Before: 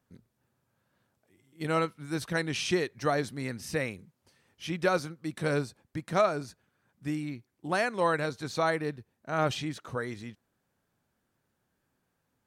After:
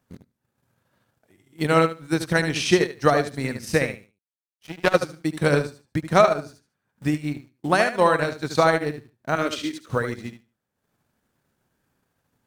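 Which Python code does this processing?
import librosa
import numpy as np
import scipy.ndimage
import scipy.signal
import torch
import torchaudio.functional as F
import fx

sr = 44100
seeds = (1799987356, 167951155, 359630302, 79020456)

p1 = fx.power_curve(x, sr, exponent=2.0, at=(3.96, 4.94))
p2 = fx.fixed_phaser(p1, sr, hz=330.0, stages=4, at=(9.35, 9.9))
p3 = fx.echo_feedback(p2, sr, ms=74, feedback_pct=27, wet_db=-6)
p4 = fx.quant_dither(p3, sr, seeds[0], bits=8, dither='none')
p5 = p3 + F.gain(torch.from_numpy(p4), -11.0).numpy()
p6 = fx.transient(p5, sr, attack_db=5, sustain_db=-10)
y = F.gain(torch.from_numpy(p6), 4.5).numpy()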